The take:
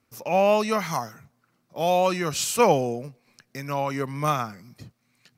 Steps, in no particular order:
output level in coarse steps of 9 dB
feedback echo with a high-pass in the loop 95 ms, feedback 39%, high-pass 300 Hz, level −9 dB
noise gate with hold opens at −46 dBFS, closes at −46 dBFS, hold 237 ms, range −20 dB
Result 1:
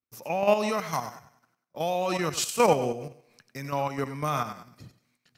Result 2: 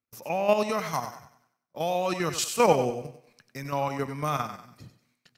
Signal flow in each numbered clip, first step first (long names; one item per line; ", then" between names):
noise gate with hold, then feedback echo with a high-pass in the loop, then output level in coarse steps
output level in coarse steps, then noise gate with hold, then feedback echo with a high-pass in the loop